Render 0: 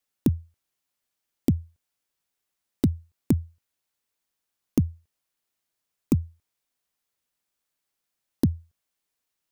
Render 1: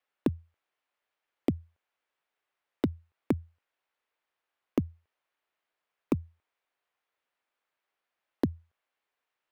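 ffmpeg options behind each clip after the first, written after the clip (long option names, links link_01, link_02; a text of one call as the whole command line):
ffmpeg -i in.wav -filter_complex "[0:a]acrossover=split=380 3000:gain=0.158 1 0.0891[link_01][link_02][link_03];[link_01][link_02][link_03]amix=inputs=3:normalize=0,volume=5dB" out.wav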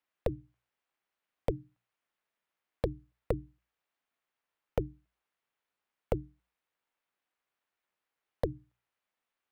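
ffmpeg -i in.wav -af "aeval=exprs='val(0)*sin(2*PI*220*n/s)':channel_layout=same,bandreject=frequency=60:width_type=h:width=6,bandreject=frequency=120:width_type=h:width=6,bandreject=frequency=180:width_type=h:width=6" out.wav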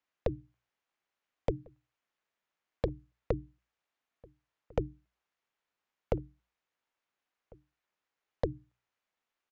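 ffmpeg -i in.wav -filter_complex "[0:a]aresample=16000,aresample=44100,asplit=2[link_01][link_02];[link_02]adelay=1399,volume=-25dB,highshelf=frequency=4000:gain=-31.5[link_03];[link_01][link_03]amix=inputs=2:normalize=0" out.wav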